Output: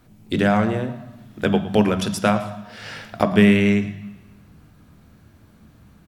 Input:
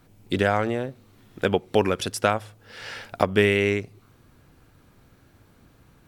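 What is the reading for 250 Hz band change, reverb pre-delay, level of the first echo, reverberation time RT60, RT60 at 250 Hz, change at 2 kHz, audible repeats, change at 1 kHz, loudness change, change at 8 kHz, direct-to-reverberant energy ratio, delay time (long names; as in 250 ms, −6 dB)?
+10.0 dB, 3 ms, −15.0 dB, 1.1 s, 0.95 s, +1.5 dB, 1, +2.0 dB, +4.0 dB, +1.5 dB, 8.0 dB, 111 ms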